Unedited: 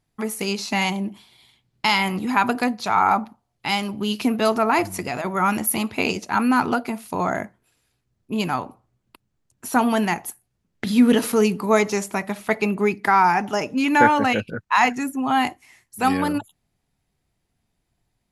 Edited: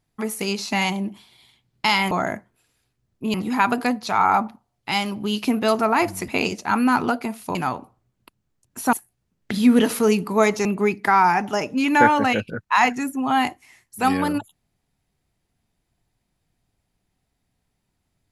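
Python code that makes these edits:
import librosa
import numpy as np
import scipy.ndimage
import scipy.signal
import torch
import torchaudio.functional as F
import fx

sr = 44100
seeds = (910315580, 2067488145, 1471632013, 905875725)

y = fx.edit(x, sr, fx.cut(start_s=5.05, length_s=0.87),
    fx.move(start_s=7.19, length_s=1.23, to_s=2.11),
    fx.cut(start_s=9.8, length_s=0.46),
    fx.cut(start_s=11.98, length_s=0.67), tone=tone)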